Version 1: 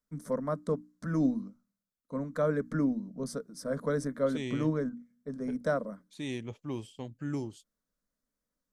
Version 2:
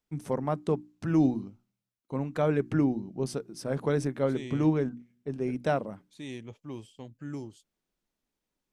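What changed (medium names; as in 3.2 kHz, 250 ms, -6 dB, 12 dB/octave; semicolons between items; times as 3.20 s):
first voice: remove static phaser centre 540 Hz, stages 8; second voice -3.5 dB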